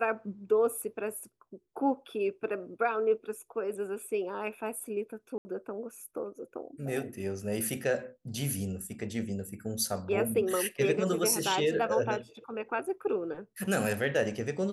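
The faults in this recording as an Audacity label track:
5.380000	5.450000	gap 70 ms

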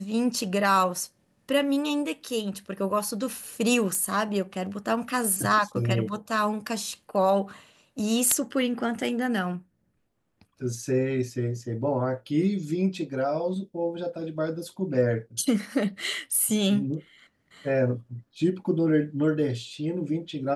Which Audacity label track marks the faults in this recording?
3.950000	3.950000	pop -15 dBFS

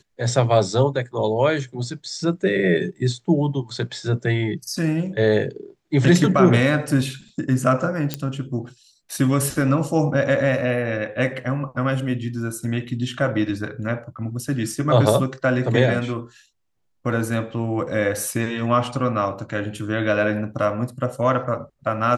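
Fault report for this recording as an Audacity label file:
8.140000	8.140000	pop -8 dBFS

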